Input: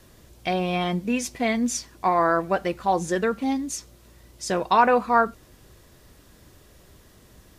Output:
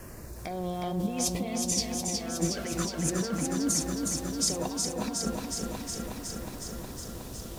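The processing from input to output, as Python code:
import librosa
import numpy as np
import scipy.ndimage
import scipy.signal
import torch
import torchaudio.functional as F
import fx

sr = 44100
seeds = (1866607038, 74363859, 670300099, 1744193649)

y = fx.dmg_crackle(x, sr, seeds[0], per_s=550.0, level_db=-50.0)
y = fx.over_compress(y, sr, threshold_db=-33.0, ratio=-1.0)
y = fx.filter_lfo_notch(y, sr, shape='saw_down', hz=0.33, low_hz=640.0, high_hz=3800.0, q=0.84)
y = fx.echo_crushed(y, sr, ms=365, feedback_pct=80, bits=10, wet_db=-4.0)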